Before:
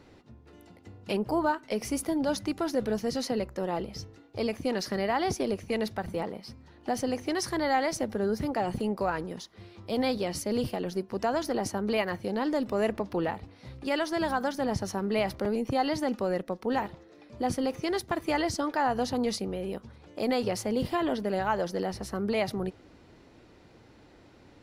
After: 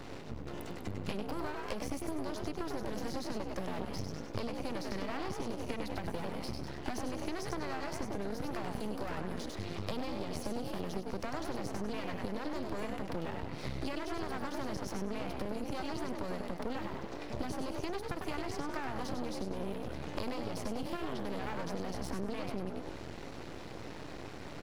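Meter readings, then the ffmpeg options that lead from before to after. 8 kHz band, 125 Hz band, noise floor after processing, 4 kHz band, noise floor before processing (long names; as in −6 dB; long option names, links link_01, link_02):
−9.0 dB, −3.5 dB, −44 dBFS, −7.5 dB, −56 dBFS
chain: -filter_complex "[0:a]acrossover=split=250|1800[link_01][link_02][link_03];[link_01]acompressor=threshold=-41dB:ratio=4[link_04];[link_02]acompressor=threshold=-42dB:ratio=4[link_05];[link_03]acompressor=threshold=-53dB:ratio=4[link_06];[link_04][link_05][link_06]amix=inputs=3:normalize=0,asplit=2[link_07][link_08];[link_08]asplit=5[link_09][link_10][link_11][link_12][link_13];[link_09]adelay=98,afreqshift=62,volume=-5.5dB[link_14];[link_10]adelay=196,afreqshift=124,volume=-13dB[link_15];[link_11]adelay=294,afreqshift=186,volume=-20.6dB[link_16];[link_12]adelay=392,afreqshift=248,volume=-28.1dB[link_17];[link_13]adelay=490,afreqshift=310,volume=-35.6dB[link_18];[link_14][link_15][link_16][link_17][link_18]amix=inputs=5:normalize=0[link_19];[link_07][link_19]amix=inputs=2:normalize=0,aeval=exprs='max(val(0),0)':channel_layout=same,acompressor=threshold=-45dB:ratio=10,volume=13dB"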